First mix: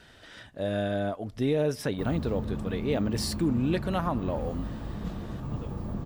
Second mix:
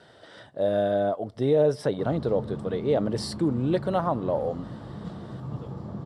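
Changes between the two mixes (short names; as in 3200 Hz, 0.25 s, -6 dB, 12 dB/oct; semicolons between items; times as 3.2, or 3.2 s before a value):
speech: add bell 570 Hz +7.5 dB 1.5 oct; master: add speaker cabinet 120–9400 Hz, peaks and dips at 130 Hz +5 dB, 250 Hz -4 dB, 1700 Hz -3 dB, 2500 Hz -10 dB, 6600 Hz -9 dB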